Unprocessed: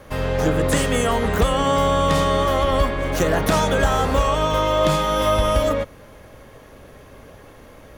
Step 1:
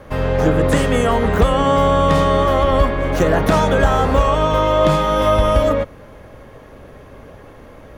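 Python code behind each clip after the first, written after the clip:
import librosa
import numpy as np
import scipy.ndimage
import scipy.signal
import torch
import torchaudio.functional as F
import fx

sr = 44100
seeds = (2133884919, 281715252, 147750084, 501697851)

y = fx.high_shelf(x, sr, hz=3200.0, db=-10.0)
y = y * librosa.db_to_amplitude(4.5)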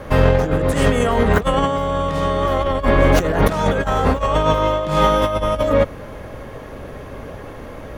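y = fx.over_compress(x, sr, threshold_db=-18.0, ratio=-0.5)
y = y * librosa.db_to_amplitude(2.5)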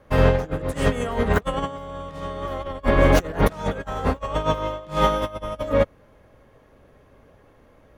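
y = fx.upward_expand(x, sr, threshold_db=-24.0, expansion=2.5)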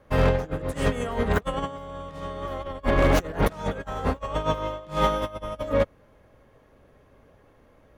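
y = 10.0 ** (-9.0 / 20.0) * (np.abs((x / 10.0 ** (-9.0 / 20.0) + 3.0) % 4.0 - 2.0) - 1.0)
y = y * librosa.db_to_amplitude(-3.0)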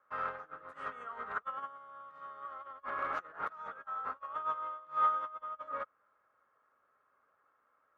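y = fx.bandpass_q(x, sr, hz=1300.0, q=7.2)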